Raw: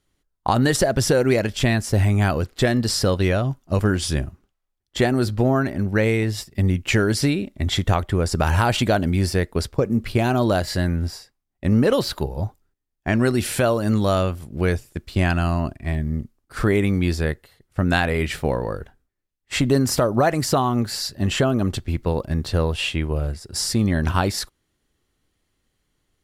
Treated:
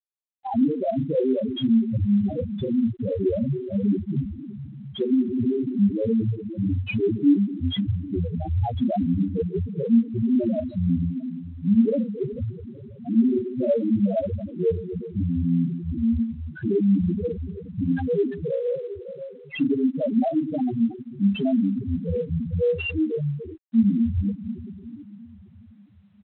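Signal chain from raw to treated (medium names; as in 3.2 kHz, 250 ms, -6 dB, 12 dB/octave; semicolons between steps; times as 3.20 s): block-companded coder 5-bit; high-pass 190 Hz 6 dB/octave; dynamic bell 250 Hz, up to +5 dB, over -33 dBFS, Q 1; compression 6:1, threshold -19 dBFS, peak gain reduction 8 dB; integer overflow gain 11 dB; Butterworth band-stop 1.3 kHz, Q 3.9; doubling 35 ms -4 dB; echo from a far wall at 120 m, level -24 dB; reverberation RT60 3.5 s, pre-delay 22 ms, DRR 6.5 dB; loudest bins only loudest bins 2; trim +4.5 dB; G.726 24 kbps 8 kHz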